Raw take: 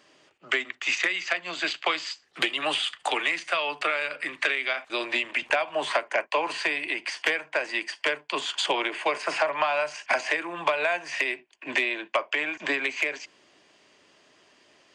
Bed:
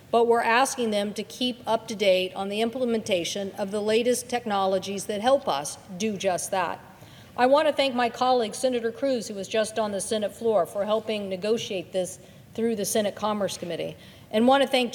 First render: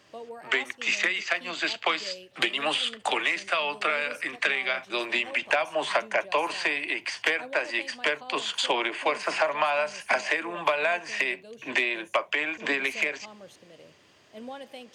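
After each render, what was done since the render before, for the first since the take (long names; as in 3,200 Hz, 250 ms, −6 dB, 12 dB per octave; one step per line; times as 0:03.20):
mix in bed −21 dB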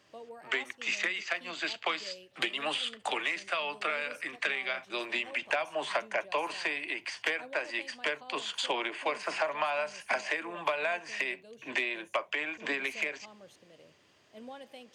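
level −6 dB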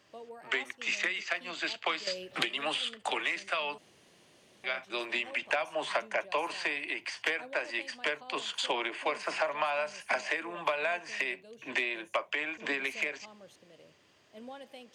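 0:02.07–0:02.58: multiband upward and downward compressor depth 100%
0:03.78–0:04.64: fill with room tone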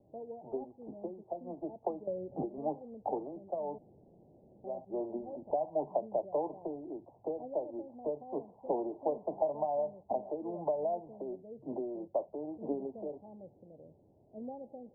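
Butterworth low-pass 850 Hz 72 dB per octave
spectral tilt −2.5 dB per octave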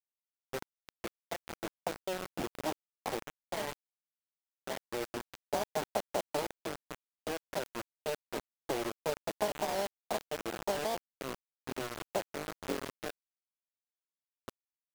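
sub-harmonics by changed cycles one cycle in 3, muted
bit reduction 6 bits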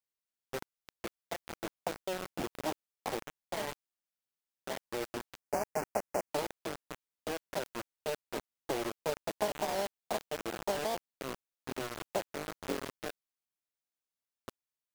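0:05.39–0:06.31: Butterworth band-reject 3,600 Hz, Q 1.4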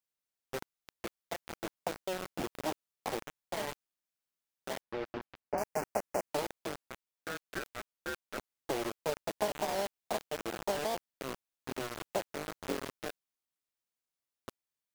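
0:04.81–0:05.58: high-frequency loss of the air 270 metres
0:06.89–0:08.38: ring modulation 960 Hz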